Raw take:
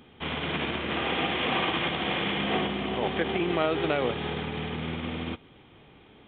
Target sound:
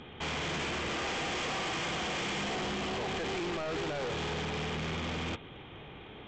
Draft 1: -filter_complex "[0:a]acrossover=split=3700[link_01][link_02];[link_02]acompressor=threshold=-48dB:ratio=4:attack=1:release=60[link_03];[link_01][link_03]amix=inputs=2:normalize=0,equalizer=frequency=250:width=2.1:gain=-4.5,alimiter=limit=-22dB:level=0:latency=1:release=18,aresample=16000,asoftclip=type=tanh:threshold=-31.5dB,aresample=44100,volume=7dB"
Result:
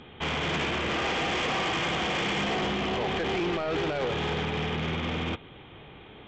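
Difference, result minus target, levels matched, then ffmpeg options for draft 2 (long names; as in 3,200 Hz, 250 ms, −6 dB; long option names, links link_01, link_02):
soft clipping: distortion −5 dB
-filter_complex "[0:a]acrossover=split=3700[link_01][link_02];[link_02]acompressor=threshold=-48dB:ratio=4:attack=1:release=60[link_03];[link_01][link_03]amix=inputs=2:normalize=0,equalizer=frequency=250:width=2.1:gain=-4.5,alimiter=limit=-22dB:level=0:latency=1:release=18,aresample=16000,asoftclip=type=tanh:threshold=-40dB,aresample=44100,volume=7dB"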